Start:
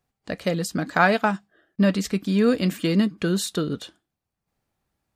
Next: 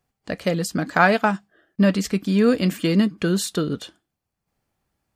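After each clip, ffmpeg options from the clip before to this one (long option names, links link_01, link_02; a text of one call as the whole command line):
ffmpeg -i in.wav -af "bandreject=frequency=3800:width=21,volume=2dB" out.wav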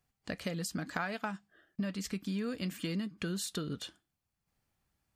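ffmpeg -i in.wav -af "equalizer=frequency=470:width=0.53:gain=-6,acompressor=threshold=-31dB:ratio=5,volume=-3dB" out.wav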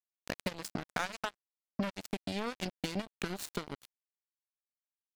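ffmpeg -i in.wav -af "acrusher=bits=4:mix=0:aa=0.5,volume=1dB" out.wav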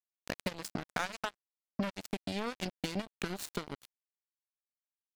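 ffmpeg -i in.wav -af anull out.wav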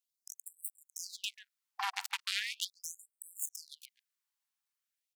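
ffmpeg -i in.wav -filter_complex "[0:a]asplit=2[link_01][link_02];[link_02]adelay=140,highpass=300,lowpass=3400,asoftclip=type=hard:threshold=-25dB,volume=-16dB[link_03];[link_01][link_03]amix=inputs=2:normalize=0,aeval=exprs='0.15*(cos(1*acos(clip(val(0)/0.15,-1,1)))-cos(1*PI/2))+0.0119*(cos(8*acos(clip(val(0)/0.15,-1,1)))-cos(8*PI/2))':channel_layout=same,afftfilt=real='re*gte(b*sr/1024,690*pow(7900/690,0.5+0.5*sin(2*PI*0.39*pts/sr)))':imag='im*gte(b*sr/1024,690*pow(7900/690,0.5+0.5*sin(2*PI*0.39*pts/sr)))':win_size=1024:overlap=0.75,volume=7dB" out.wav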